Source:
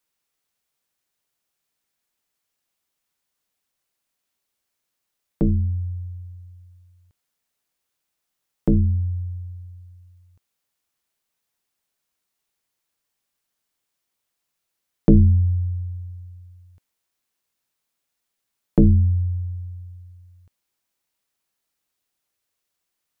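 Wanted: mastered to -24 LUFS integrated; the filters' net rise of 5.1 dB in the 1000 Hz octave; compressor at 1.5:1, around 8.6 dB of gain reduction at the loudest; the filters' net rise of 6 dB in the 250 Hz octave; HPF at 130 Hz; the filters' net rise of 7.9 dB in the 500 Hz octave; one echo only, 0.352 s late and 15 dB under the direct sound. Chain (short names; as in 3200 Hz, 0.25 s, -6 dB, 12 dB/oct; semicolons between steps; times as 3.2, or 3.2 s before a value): HPF 130 Hz; bell 250 Hz +7 dB; bell 500 Hz +7 dB; bell 1000 Hz +3 dB; compressor 1.5:1, threshold -30 dBFS; echo 0.352 s -15 dB; gain +2.5 dB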